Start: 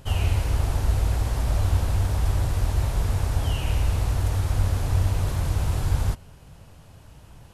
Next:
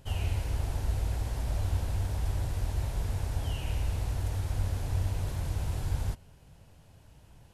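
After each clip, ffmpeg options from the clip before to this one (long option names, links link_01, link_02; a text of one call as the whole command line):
ffmpeg -i in.wav -af "equalizer=frequency=1200:width_type=o:width=0.34:gain=-5,volume=-8dB" out.wav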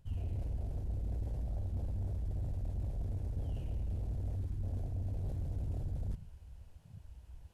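ffmpeg -i in.wav -af "afwtdn=0.0141,areverse,acompressor=threshold=-41dB:ratio=4,areverse,asoftclip=type=tanh:threshold=-39dB,volume=8dB" out.wav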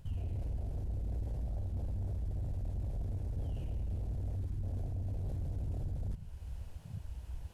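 ffmpeg -i in.wav -af "alimiter=level_in=17dB:limit=-24dB:level=0:latency=1:release=345,volume=-17dB,volume=9dB" out.wav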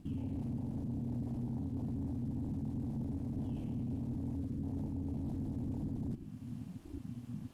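ffmpeg -i in.wav -af "aeval=exprs='val(0)*sin(2*PI*180*n/s)':channel_layout=same,volume=1dB" out.wav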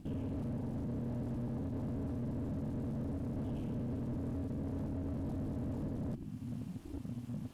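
ffmpeg -i in.wav -af "asoftclip=type=hard:threshold=-38dB,volume=3dB" out.wav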